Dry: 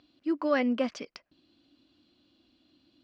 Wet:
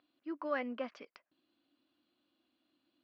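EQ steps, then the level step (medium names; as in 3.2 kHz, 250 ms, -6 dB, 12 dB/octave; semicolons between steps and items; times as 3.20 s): band-pass filter 1.1 kHz, Q 1.3; distance through air 70 m; peaking EQ 990 Hz -8 dB 1.9 oct; +2.0 dB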